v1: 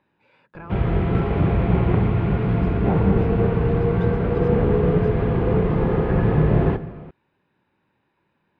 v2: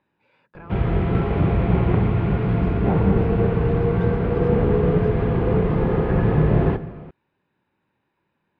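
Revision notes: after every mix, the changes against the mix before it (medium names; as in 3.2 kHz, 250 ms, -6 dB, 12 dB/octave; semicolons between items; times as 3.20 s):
speech -3.5 dB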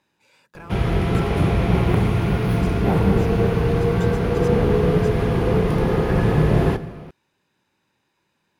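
master: remove distance through air 440 m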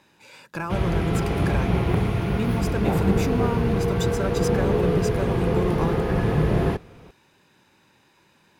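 speech +11.0 dB; reverb: off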